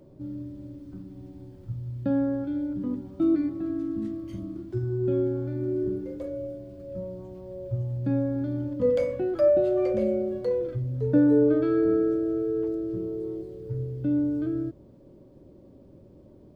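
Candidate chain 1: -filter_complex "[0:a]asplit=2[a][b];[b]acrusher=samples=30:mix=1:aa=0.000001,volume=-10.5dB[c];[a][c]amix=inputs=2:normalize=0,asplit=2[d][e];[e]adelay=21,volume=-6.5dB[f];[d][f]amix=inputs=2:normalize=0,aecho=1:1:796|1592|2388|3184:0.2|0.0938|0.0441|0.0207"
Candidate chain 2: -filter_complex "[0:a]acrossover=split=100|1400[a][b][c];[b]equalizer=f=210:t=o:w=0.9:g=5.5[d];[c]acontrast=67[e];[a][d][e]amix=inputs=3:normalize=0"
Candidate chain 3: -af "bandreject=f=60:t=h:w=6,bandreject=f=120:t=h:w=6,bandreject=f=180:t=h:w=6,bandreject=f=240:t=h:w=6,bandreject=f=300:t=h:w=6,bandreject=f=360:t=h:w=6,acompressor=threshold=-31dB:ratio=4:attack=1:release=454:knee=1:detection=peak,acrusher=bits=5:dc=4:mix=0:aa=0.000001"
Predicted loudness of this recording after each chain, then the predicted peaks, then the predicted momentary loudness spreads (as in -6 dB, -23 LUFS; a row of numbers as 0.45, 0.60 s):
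-24.0, -25.5, -41.0 LUFS; -6.0, -8.5, -25.0 dBFS; 19, 17, 11 LU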